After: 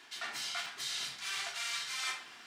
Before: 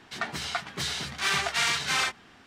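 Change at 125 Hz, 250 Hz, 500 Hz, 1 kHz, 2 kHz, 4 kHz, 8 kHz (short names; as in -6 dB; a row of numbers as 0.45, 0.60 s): -25.0, -20.5, -15.0, -12.5, -10.5, -7.5, -7.0 dB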